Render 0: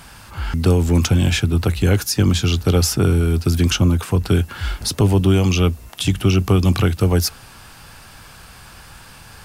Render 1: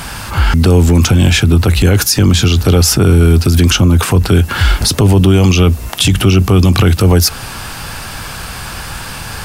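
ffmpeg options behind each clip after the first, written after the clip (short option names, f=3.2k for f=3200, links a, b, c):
-filter_complex "[0:a]asplit=2[a][b];[b]acompressor=threshold=-23dB:ratio=6,volume=-1dB[c];[a][c]amix=inputs=2:normalize=0,alimiter=level_in=12dB:limit=-1dB:release=50:level=0:latency=1,volume=-1dB"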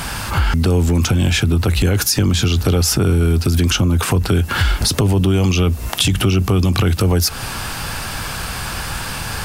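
-af "acompressor=threshold=-14dB:ratio=3"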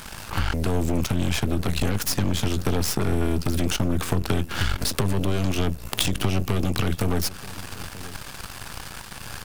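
-filter_complex "[0:a]aeval=exprs='0.794*(cos(1*acos(clip(val(0)/0.794,-1,1)))-cos(1*PI/2))+0.224*(cos(3*acos(clip(val(0)/0.794,-1,1)))-cos(3*PI/2))+0.0398*(cos(8*acos(clip(val(0)/0.794,-1,1)))-cos(8*PI/2))':c=same,asplit=2[a][b];[b]adelay=932.9,volume=-17dB,highshelf=f=4k:g=-21[c];[a][c]amix=inputs=2:normalize=0"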